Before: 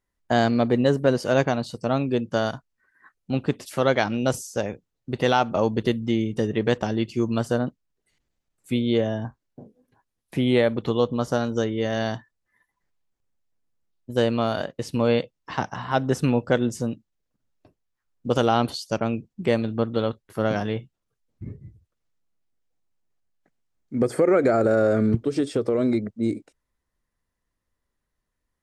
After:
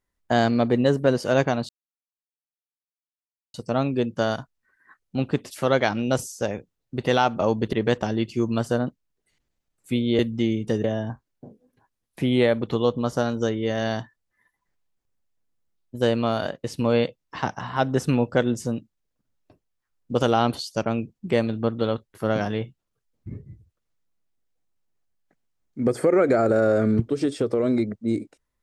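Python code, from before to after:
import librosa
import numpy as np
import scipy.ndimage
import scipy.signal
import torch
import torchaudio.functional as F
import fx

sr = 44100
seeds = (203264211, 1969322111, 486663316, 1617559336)

y = fx.edit(x, sr, fx.insert_silence(at_s=1.69, length_s=1.85),
    fx.move(start_s=5.88, length_s=0.65, to_s=8.99), tone=tone)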